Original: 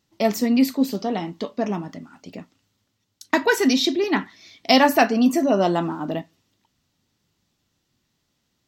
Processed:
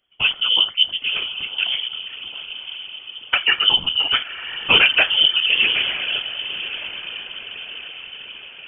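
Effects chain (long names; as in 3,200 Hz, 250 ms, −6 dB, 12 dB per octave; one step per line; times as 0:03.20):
feedback delay with all-pass diffusion 1,050 ms, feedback 54%, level −11.5 dB
random phases in short frames
voice inversion scrambler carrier 3,300 Hz
level +1 dB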